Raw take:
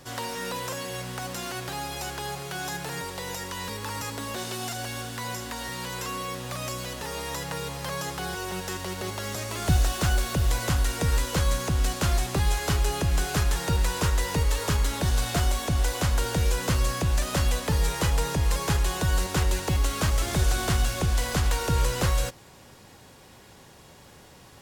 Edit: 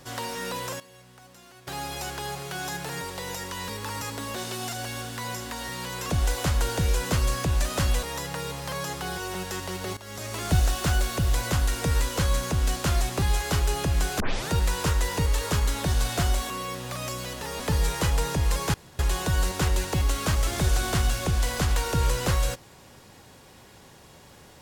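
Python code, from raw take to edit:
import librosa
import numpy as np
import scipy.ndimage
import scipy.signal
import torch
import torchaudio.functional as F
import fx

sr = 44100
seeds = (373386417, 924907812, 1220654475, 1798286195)

y = fx.edit(x, sr, fx.fade_down_up(start_s=0.57, length_s=1.33, db=-17.0, fade_s=0.23, curve='log'),
    fx.swap(start_s=6.1, length_s=1.1, other_s=15.67, other_length_s=1.93),
    fx.fade_in_from(start_s=9.14, length_s=0.38, floor_db=-15.0),
    fx.tape_start(start_s=13.37, length_s=0.3),
    fx.insert_room_tone(at_s=18.74, length_s=0.25), tone=tone)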